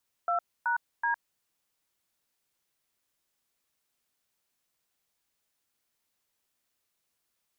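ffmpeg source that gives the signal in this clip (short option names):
-f lavfi -i "aevalsrc='0.0422*clip(min(mod(t,0.377),0.109-mod(t,0.377))/0.002,0,1)*(eq(floor(t/0.377),0)*(sin(2*PI*697*mod(t,0.377))+sin(2*PI*1336*mod(t,0.377)))+eq(floor(t/0.377),1)*(sin(2*PI*941*mod(t,0.377))+sin(2*PI*1477*mod(t,0.377)))+eq(floor(t/0.377),2)*(sin(2*PI*941*mod(t,0.377))+sin(2*PI*1633*mod(t,0.377))))':d=1.131:s=44100"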